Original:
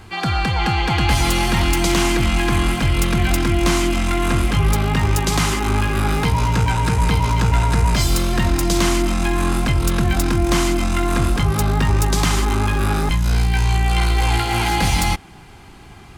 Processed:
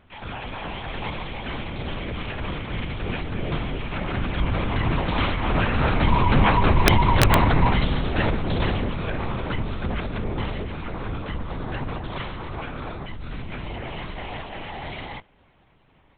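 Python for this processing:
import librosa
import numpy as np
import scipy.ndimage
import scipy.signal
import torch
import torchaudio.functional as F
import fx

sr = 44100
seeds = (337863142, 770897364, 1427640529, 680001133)

y = fx.doppler_pass(x, sr, speed_mps=13, closest_m=15.0, pass_at_s=6.79)
y = scipy.signal.sosfilt(scipy.signal.butter(4, 58.0, 'highpass', fs=sr, output='sos'), y)
y = fx.lpc_vocoder(y, sr, seeds[0], excitation='whisper', order=8)
y = (np.mod(10.0 ** (7.5 / 20.0) * y + 1.0, 2.0) - 1.0) / 10.0 ** (7.5 / 20.0)
y = F.gain(torch.from_numpy(y), 1.5).numpy()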